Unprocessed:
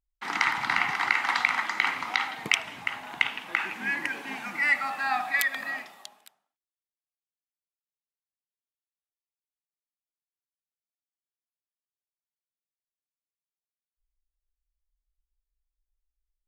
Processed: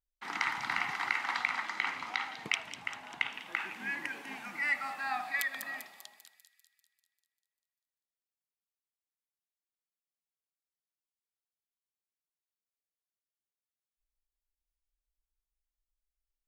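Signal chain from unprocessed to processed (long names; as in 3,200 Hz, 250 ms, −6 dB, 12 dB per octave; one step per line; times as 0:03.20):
0:01.18–0:03.34: high-shelf EQ 11,000 Hz −11 dB
delay with a high-pass on its return 197 ms, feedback 56%, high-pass 4,900 Hz, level −5 dB
level −7.5 dB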